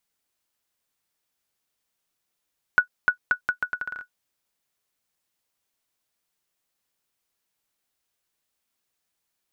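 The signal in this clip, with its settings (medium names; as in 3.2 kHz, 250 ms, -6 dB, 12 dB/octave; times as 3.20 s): bouncing ball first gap 0.30 s, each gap 0.77, 1.47 kHz, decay 97 ms -6.5 dBFS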